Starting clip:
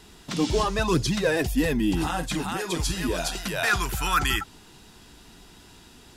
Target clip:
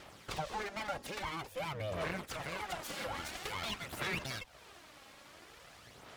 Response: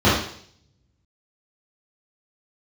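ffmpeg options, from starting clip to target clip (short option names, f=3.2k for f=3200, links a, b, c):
-filter_complex "[0:a]acrossover=split=240 2500:gain=0.126 1 0.251[a][b][c];[a][b][c]amix=inputs=3:normalize=0,aeval=exprs='abs(val(0))':c=same,highpass=57,acompressor=threshold=-42dB:ratio=5,aphaser=in_gain=1:out_gain=1:delay=3.7:decay=0.41:speed=0.49:type=sinusoidal,volume=3dB"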